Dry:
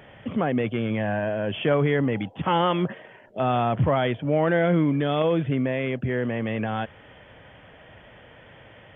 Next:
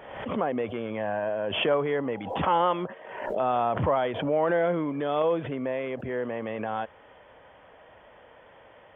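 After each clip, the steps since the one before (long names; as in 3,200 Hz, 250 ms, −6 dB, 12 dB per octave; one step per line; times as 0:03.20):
octave-band graphic EQ 125/500/1,000 Hz −7/+6/+9 dB
background raised ahead of every attack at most 54 dB per second
level −9 dB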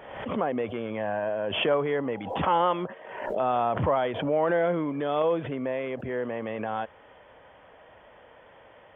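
no processing that can be heard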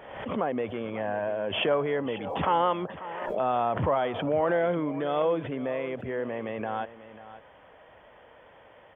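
single-tap delay 542 ms −15 dB
level −1 dB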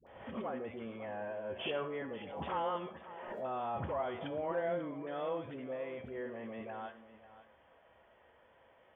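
tuned comb filter 75 Hz, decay 0.5 s, harmonics odd, mix 70%
all-pass dispersion highs, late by 69 ms, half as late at 600 Hz
convolution reverb RT60 0.35 s, pre-delay 85 ms, DRR 15.5 dB
level −3 dB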